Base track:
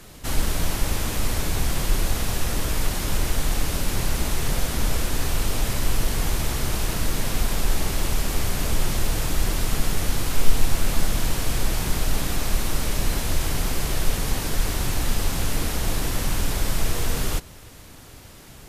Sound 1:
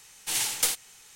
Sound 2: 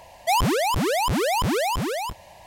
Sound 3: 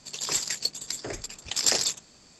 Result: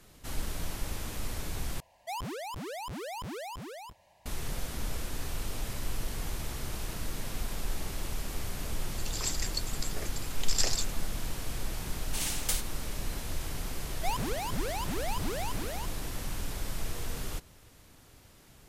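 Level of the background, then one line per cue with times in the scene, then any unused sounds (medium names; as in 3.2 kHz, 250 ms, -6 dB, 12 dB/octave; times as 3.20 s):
base track -12 dB
1.80 s: replace with 2 -16.5 dB
8.92 s: add 3 -7 dB
11.86 s: add 1 -7 dB
13.76 s: add 2 -13.5 dB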